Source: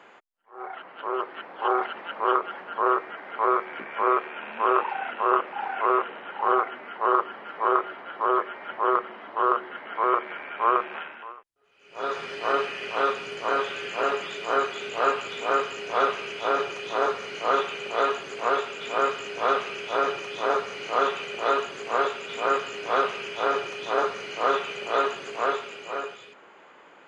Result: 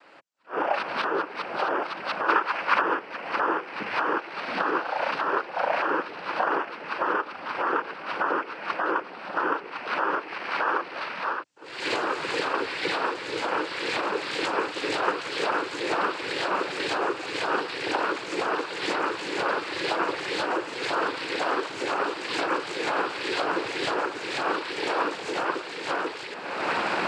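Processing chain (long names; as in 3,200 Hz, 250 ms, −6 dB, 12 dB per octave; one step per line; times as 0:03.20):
camcorder AGC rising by 35 dB per second
0:02.28–0:02.81: parametric band 1,800 Hz +8.5 dB 1.7 octaves
cochlear-implant simulation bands 8
level −3.5 dB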